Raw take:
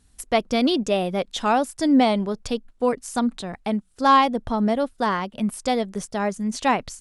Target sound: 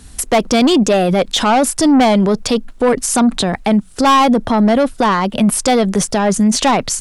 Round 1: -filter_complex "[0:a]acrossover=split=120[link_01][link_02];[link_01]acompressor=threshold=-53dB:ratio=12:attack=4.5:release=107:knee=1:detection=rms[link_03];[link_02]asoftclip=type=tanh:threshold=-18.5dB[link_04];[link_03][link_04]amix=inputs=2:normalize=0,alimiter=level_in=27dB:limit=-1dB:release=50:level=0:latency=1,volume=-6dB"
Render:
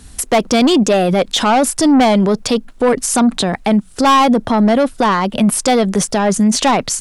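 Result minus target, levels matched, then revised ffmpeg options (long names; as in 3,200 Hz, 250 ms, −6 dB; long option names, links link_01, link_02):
downward compressor: peak gain reduction +6 dB
-filter_complex "[0:a]acrossover=split=120[link_01][link_02];[link_01]acompressor=threshold=-46.5dB:ratio=12:attack=4.5:release=107:knee=1:detection=rms[link_03];[link_02]asoftclip=type=tanh:threshold=-18.5dB[link_04];[link_03][link_04]amix=inputs=2:normalize=0,alimiter=level_in=27dB:limit=-1dB:release=50:level=0:latency=1,volume=-6dB"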